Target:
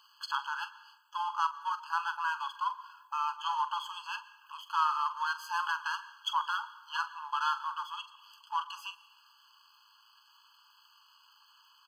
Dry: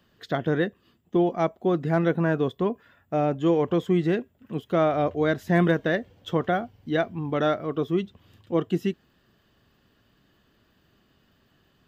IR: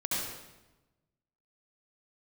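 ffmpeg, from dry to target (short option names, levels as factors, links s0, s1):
-filter_complex "[0:a]aeval=exprs='if(lt(val(0),0),0.447*val(0),val(0))':c=same,equalizer=f=500:t=o:w=1:g=-12,equalizer=f=1000:t=o:w=1:g=9,equalizer=f=2000:t=o:w=1:g=-8,equalizer=f=4000:t=o:w=1:g=10,asplit=2[s0][s1];[s1]acompressor=threshold=0.00891:ratio=6,volume=1.26[s2];[s0][s2]amix=inputs=2:normalize=0,asplit=2[s3][s4];[s4]adelay=44,volume=0.237[s5];[s3][s5]amix=inputs=2:normalize=0,asplit=2[s6][s7];[1:a]atrim=start_sample=2205,adelay=48[s8];[s7][s8]afir=irnorm=-1:irlink=0,volume=0.075[s9];[s6][s9]amix=inputs=2:normalize=0,afftfilt=real='re*eq(mod(floor(b*sr/1024/840),2),1)':imag='im*eq(mod(floor(b*sr/1024/840),2),1)':win_size=1024:overlap=0.75"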